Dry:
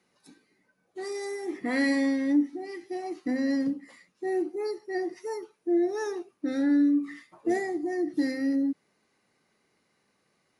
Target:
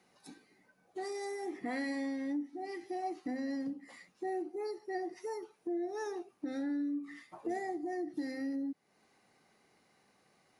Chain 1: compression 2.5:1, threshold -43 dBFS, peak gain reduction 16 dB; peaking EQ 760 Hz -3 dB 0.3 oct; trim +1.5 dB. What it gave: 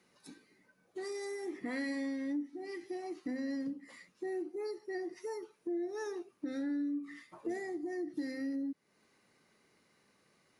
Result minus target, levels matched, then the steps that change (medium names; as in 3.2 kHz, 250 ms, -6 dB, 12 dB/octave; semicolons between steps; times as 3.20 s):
1 kHz band -7.5 dB
change: peaking EQ 760 Hz +7.5 dB 0.3 oct